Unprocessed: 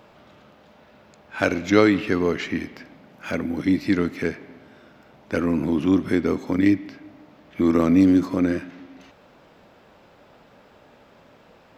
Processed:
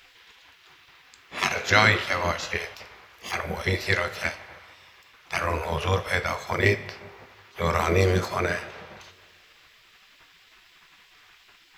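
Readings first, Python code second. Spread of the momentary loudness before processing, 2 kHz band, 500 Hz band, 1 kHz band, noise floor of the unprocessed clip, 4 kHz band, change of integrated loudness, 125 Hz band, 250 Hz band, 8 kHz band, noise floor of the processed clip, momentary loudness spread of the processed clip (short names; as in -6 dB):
17 LU, +5.5 dB, -3.0 dB, +5.0 dB, -53 dBFS, +7.0 dB, -3.0 dB, +1.5 dB, -15.5 dB, n/a, -57 dBFS, 20 LU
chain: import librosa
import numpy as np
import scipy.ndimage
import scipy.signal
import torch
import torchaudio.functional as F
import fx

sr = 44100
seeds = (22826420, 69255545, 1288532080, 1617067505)

y = fx.spec_gate(x, sr, threshold_db=-15, keep='weak')
y = fx.rev_double_slope(y, sr, seeds[0], early_s=0.35, late_s=2.7, knee_db=-21, drr_db=9.5)
y = y * librosa.db_to_amplitude(7.5)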